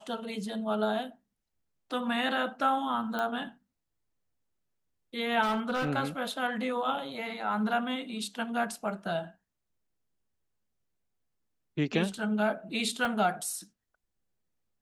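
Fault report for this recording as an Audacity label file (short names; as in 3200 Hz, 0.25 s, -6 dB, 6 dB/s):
3.190000	3.190000	pop -19 dBFS
5.420000	5.900000	clipped -25.5 dBFS
13.050000	13.050000	gap 2.6 ms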